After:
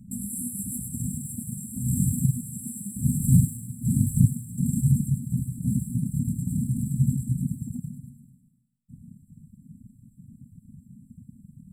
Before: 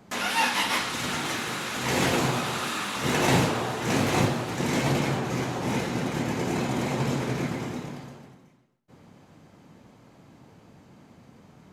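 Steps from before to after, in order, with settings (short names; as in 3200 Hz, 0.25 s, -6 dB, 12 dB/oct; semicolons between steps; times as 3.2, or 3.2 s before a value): in parallel at -10 dB: backlash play -43 dBFS; on the sum: brick-wall FIR band-stop 260–7400 Hz; high shelf 8100 Hz -6.5 dB; reverb removal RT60 1.6 s; dynamic EQ 260 Hz, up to -6 dB, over -43 dBFS, Q 1.4; on a send: thin delay 0.102 s, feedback 51%, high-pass 5100 Hz, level -3 dB; on the sum: gain +8.5 dB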